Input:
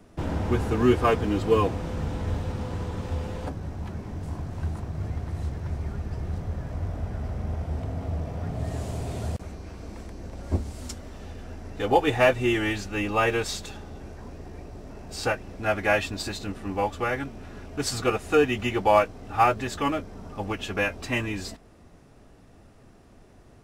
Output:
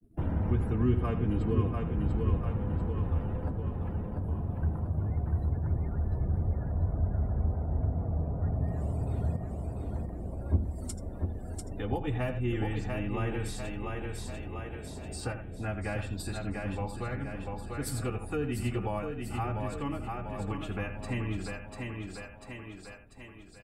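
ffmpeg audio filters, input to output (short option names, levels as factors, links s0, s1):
-filter_complex "[0:a]asplit=2[s0][s1];[s1]aecho=0:1:82:0.282[s2];[s0][s2]amix=inputs=2:normalize=0,afftdn=nr=27:nf=-45,agate=range=0.0224:threshold=0.00316:ratio=3:detection=peak,asplit=2[s3][s4];[s4]aecho=0:1:693|1386|2079|2772|3465:0.473|0.185|0.072|0.0281|0.0109[s5];[s3][s5]amix=inputs=2:normalize=0,acrossover=split=220[s6][s7];[s7]acompressor=threshold=0.00708:ratio=2.5[s8];[s6][s8]amix=inputs=2:normalize=0,aexciter=amount=12.5:drive=2.9:freq=9000,adynamicequalizer=threshold=0.00141:dfrequency=3300:dqfactor=0.7:tfrequency=3300:tqfactor=0.7:attack=5:release=100:ratio=0.375:range=2:mode=cutabove:tftype=highshelf"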